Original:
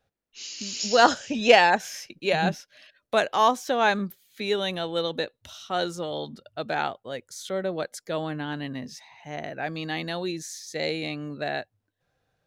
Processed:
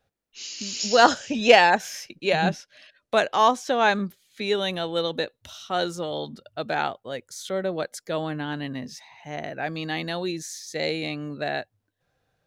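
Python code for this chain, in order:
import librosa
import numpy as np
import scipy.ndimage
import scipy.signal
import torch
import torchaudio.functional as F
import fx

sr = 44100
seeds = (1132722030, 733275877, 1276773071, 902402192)

y = fx.lowpass(x, sr, hz=10000.0, slope=12, at=(2.17, 4.55))
y = F.gain(torch.from_numpy(y), 1.5).numpy()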